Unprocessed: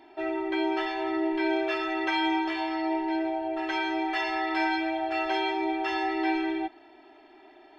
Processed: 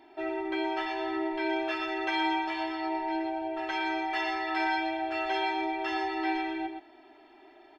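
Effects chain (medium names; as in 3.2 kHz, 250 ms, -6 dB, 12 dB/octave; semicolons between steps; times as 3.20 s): delay 120 ms -7.5 dB; trim -2.5 dB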